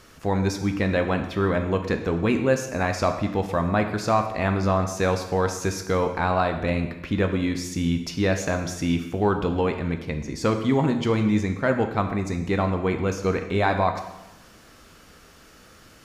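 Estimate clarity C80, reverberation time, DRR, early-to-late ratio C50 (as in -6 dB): 10.0 dB, 1.0 s, 5.5 dB, 8.0 dB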